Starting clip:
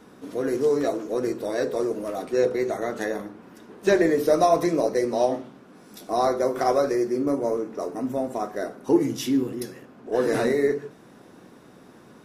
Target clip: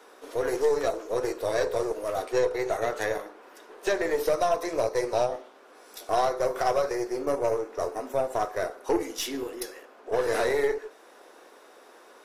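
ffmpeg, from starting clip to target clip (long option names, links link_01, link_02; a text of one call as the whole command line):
ffmpeg -i in.wav -af "highpass=frequency=430:width=0.5412,highpass=frequency=430:width=1.3066,alimiter=limit=-17.5dB:level=0:latency=1:release=431,aeval=exprs='0.133*(cos(1*acos(clip(val(0)/0.133,-1,1)))-cos(1*PI/2))+0.0133*(cos(4*acos(clip(val(0)/0.133,-1,1)))-cos(4*PI/2))':channel_layout=same,volume=2dB" out.wav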